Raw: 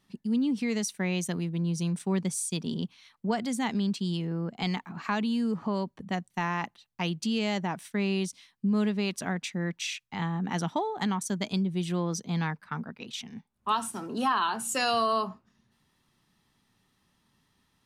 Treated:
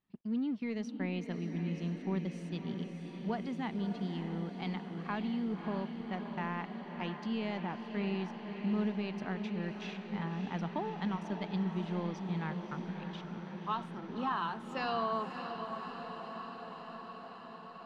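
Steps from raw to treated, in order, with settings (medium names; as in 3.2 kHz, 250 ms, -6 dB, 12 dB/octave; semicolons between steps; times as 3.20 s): companding laws mixed up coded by A; distance through air 270 m; echo that smears into a reverb 593 ms, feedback 75%, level -7.5 dB; trim -6 dB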